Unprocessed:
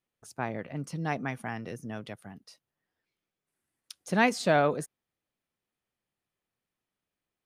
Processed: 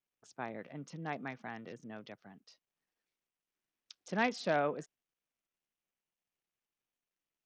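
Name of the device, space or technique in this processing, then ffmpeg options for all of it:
Bluetooth headset: -af "highpass=170,aresample=16000,aresample=44100,volume=-7.5dB" -ar 48000 -c:a sbc -b:a 64k

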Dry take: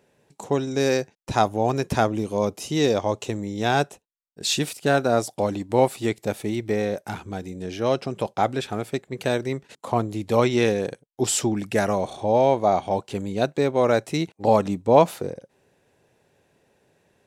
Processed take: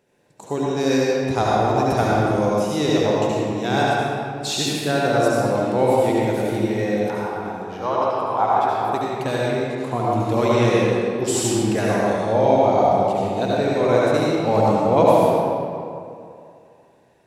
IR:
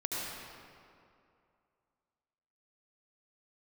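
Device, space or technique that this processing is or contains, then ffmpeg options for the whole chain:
stairwell: -filter_complex "[0:a]asettb=1/sr,asplit=3[a][b][c];[a]atrim=end=7.104[d];[b]atrim=start=7.1:end=8.91,asetpts=PTS-STARTPTS,afade=t=in:d=0.004:c=qsin,afade=t=out:st=1.806:d=0.004:c=qsin,equalizer=f=125:t=o:w=1:g=-9,equalizer=f=250:t=o:w=1:g=-7,equalizer=f=500:t=o:w=1:g=-4,equalizer=f=1k:t=o:w=1:g=12,equalizer=f=2k:t=o:w=1:g=-5,equalizer=f=4k:t=o:w=1:g=-4,equalizer=f=8k:t=o:w=1:g=-10[e];[c]atrim=start=8.906[f];[d][e]acrossfade=d=0.004:c1=hsin:c2=qsin[g];[g][f]acrossfade=d=0.004:c1=qsin:c2=hsin[h];[1:a]atrim=start_sample=2205[i];[h][i]afir=irnorm=-1:irlink=0,volume=-1.5dB"

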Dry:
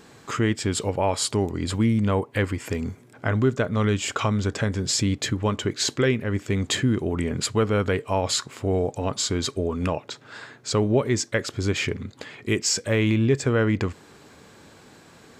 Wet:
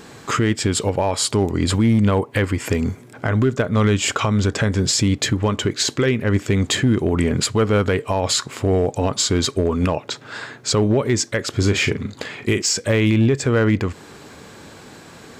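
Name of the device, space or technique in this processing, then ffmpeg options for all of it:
limiter into clipper: -filter_complex "[0:a]asettb=1/sr,asplit=3[a][b][c];[a]atrim=end=11.554[d];[b]atrim=start=11.55:end=12.62,asetpts=PTS-STARTPTS,afade=t=in:d=0.004:c=qsin,afade=t=out:st=1.066:d=0.004:c=qsin,asplit=2[e][f];[f]adelay=39,volume=-9dB[g];[e][g]amix=inputs=2:normalize=0,atrim=end_sample=47187[h];[c]atrim=start=12.616[i];[d][h]acrossfade=d=0.004:c1=hsin:c2=qsin[j];[j][i]acrossfade=d=0.004:c1=qsin:c2=hsin,alimiter=limit=-17dB:level=0:latency=1:release=204,asoftclip=type=hard:threshold=-18.5dB,volume=8.5dB"

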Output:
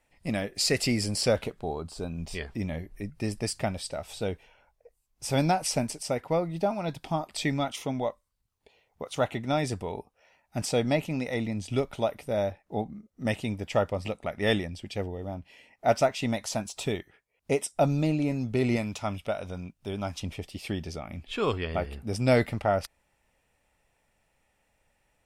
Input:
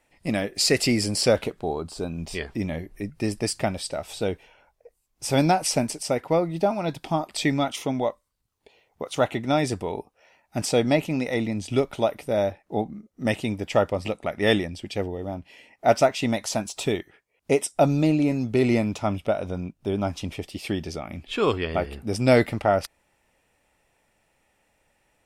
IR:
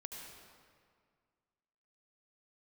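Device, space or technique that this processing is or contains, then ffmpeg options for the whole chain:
low shelf boost with a cut just above: -filter_complex "[0:a]lowshelf=f=100:g=6,equalizer=f=330:t=o:w=0.56:g=-3.5,asettb=1/sr,asplit=3[a][b][c];[a]atrim=end=18.764[d];[b]atrim=start=18.76:end=20.2,asetpts=PTS-STARTPTS,afade=t=in:d=0.004:c=qsin,afade=t=out:st=1.436:d=0.004:c=qsin,tiltshelf=f=1.1k:g=-4[e];[c]atrim=start=20.196[f];[d][e]acrossfade=d=0.004:c1=hsin:c2=qsin[g];[g][f]acrossfade=d=0.004:c1=qsin:c2=hsin,volume=-4.5dB"

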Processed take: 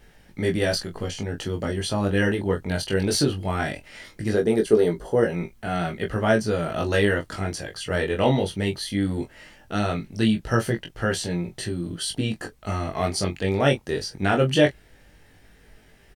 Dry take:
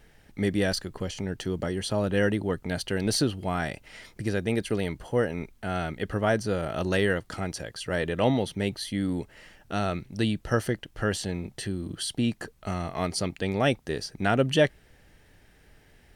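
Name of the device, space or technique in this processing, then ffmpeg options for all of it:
double-tracked vocal: -filter_complex "[0:a]asettb=1/sr,asplit=3[a][b][c];[a]atrim=end=4.344[d];[b]atrim=start=4.34:end=5.23,asetpts=PTS-STARTPTS,afade=t=in:d=0.004:c=qsin,afade=t=out:st=0.886:d=0.004:c=qsin,equalizer=f=100:t=o:w=0.67:g=-8,equalizer=f=400:t=o:w=0.67:g=10,equalizer=f=2.5k:t=o:w=0.67:g=-9[e];[c]atrim=start=5.226[f];[d][e]acrossfade=d=0.004:c1=hsin:c2=qsin[g];[g][f]acrossfade=d=0.004:c1=qsin:c2=hsin,asplit=2[h][i];[i]adelay=23,volume=-8.5dB[j];[h][j]amix=inputs=2:normalize=0,flanger=delay=17.5:depth=3.4:speed=0.18,volume=6dB"

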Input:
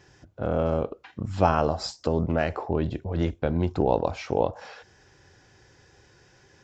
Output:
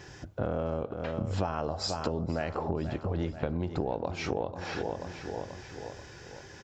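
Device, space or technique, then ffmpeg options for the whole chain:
serial compression, peaks first: -af "aecho=1:1:485|970|1455|1940:0.2|0.0938|0.0441|0.0207,acompressor=threshold=-33dB:ratio=4,acompressor=threshold=-42dB:ratio=1.5,volume=8dB"

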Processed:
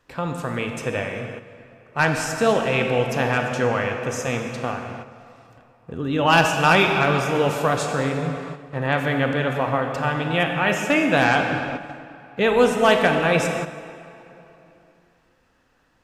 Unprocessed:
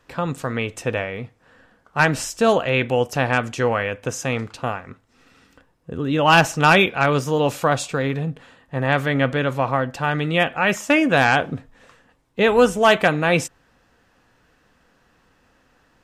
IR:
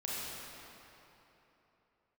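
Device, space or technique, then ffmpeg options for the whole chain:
keyed gated reverb: -filter_complex "[0:a]asplit=3[a][b][c];[1:a]atrim=start_sample=2205[d];[b][d]afir=irnorm=-1:irlink=0[e];[c]apad=whole_len=707103[f];[e][f]sidechaingate=range=-7dB:threshold=-48dB:ratio=16:detection=peak,volume=-3dB[g];[a][g]amix=inputs=2:normalize=0,volume=-6dB"

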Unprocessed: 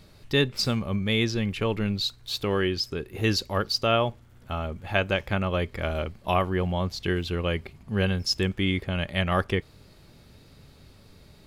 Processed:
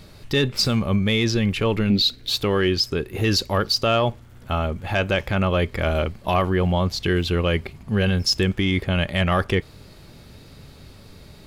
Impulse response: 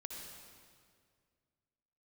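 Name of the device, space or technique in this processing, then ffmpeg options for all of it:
soft clipper into limiter: -filter_complex "[0:a]asettb=1/sr,asplit=3[a][b][c];[a]atrim=end=1.904[d];[b]atrim=start=1.9:end=2.3,asetpts=PTS-STARTPTS,afade=t=in:d=0.004:c=qsin,afade=t=out:st=0.396:d=0.004:c=qsin,equalizer=f=125:t=o:w=1:g=-5,equalizer=f=250:t=o:w=1:g=11,equalizer=f=500:t=o:w=1:g=5,equalizer=f=1k:t=o:w=1:g=-10,equalizer=f=2k:t=o:w=1:g=4,equalizer=f=4k:t=o:w=1:g=5,equalizer=f=8k:t=o:w=1:g=-5[e];[c]atrim=start=2.296[f];[d][e]acrossfade=d=0.004:c1=hsin:c2=qsin[g];[g][f]acrossfade=d=0.004:c1=qsin:c2=hsin,asoftclip=type=tanh:threshold=-12dB,alimiter=limit=-19dB:level=0:latency=1:release=18,volume=7.5dB"

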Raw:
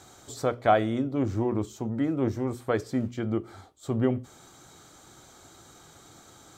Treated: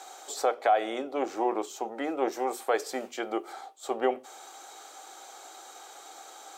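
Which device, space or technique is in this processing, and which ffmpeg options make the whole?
laptop speaker: -filter_complex "[0:a]asettb=1/sr,asplit=3[a][b][c];[a]atrim=end=2.324[d];[b]atrim=start=2.32:end=3.53,asetpts=PTS-STARTPTS,afade=t=in:d=0.004:c=qsin,afade=t=out:st=1.206:d=0.004:c=qsin,highshelf=f=5.6k:g=7[e];[c]atrim=start=3.526[f];[d][e]acrossfade=d=0.004:c1=hsin:c2=qsin[g];[g][f]acrossfade=d=0.004:c1=qsin:c2=hsin,highpass=f=420:w=0.5412,highpass=f=420:w=1.3066,equalizer=f=780:t=o:w=0.2:g=11,equalizer=f=2.6k:t=o:w=0.24:g=4,alimiter=limit=-18.5dB:level=0:latency=1:release=160,volume=4.5dB"

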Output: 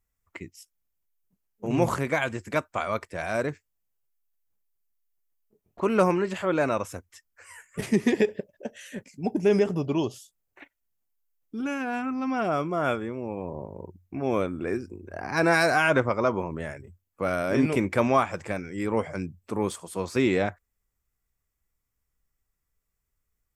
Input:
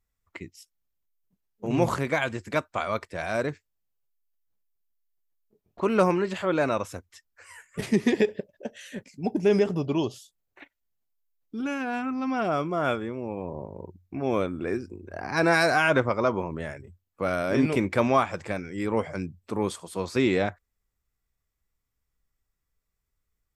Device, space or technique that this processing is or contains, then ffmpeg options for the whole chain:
exciter from parts: -filter_complex "[0:a]asplit=2[a][b];[b]highpass=f=3.7k:w=0.5412,highpass=f=3.7k:w=1.3066,asoftclip=type=tanh:threshold=-37dB,volume=-6dB[c];[a][c]amix=inputs=2:normalize=0"

